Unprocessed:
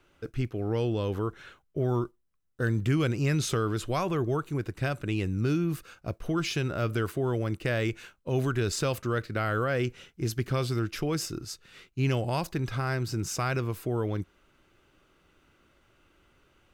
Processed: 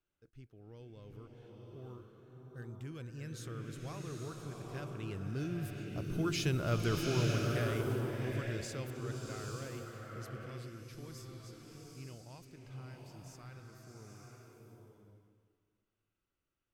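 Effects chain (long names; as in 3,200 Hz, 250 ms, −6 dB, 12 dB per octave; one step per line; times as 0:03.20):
source passing by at 0:06.66, 6 m/s, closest 3.3 metres
bass and treble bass +3 dB, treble +4 dB
slow-attack reverb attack 890 ms, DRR 0 dB
level −5.5 dB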